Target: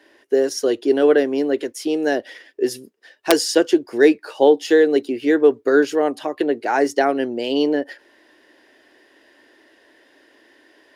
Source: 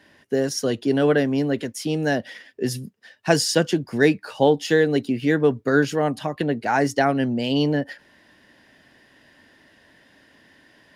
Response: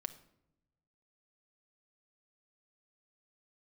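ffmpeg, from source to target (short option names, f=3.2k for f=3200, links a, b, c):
-af "aeval=exprs='(mod(1.5*val(0)+1,2)-1)/1.5':c=same,lowshelf=f=240:t=q:w=3:g=-13"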